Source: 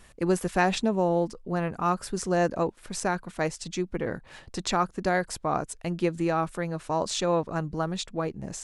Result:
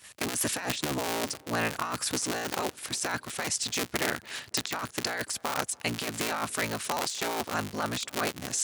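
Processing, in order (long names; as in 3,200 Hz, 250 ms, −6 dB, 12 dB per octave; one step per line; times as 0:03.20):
sub-harmonics by changed cycles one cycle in 3, inverted
high-pass filter 78 Hz 24 dB per octave
tilt shelving filter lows −9.5 dB, about 1,200 Hz
noise gate −51 dBFS, range −10 dB
compressor whose output falls as the input rises −32 dBFS, ratio −1
tape delay 285 ms, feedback 54%, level −23 dB, low-pass 1,000 Hz
level +1.5 dB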